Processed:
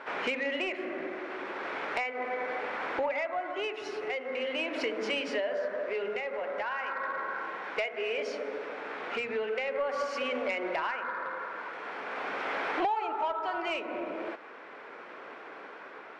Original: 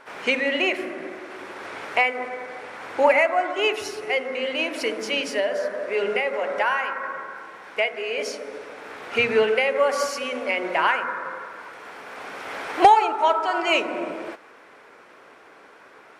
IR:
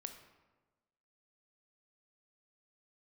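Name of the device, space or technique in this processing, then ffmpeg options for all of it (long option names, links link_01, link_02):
AM radio: -af "highpass=190,lowpass=3300,acompressor=threshold=-33dB:ratio=4,asoftclip=type=tanh:threshold=-24.5dB,tremolo=f=0.39:d=0.32,volume=4dB"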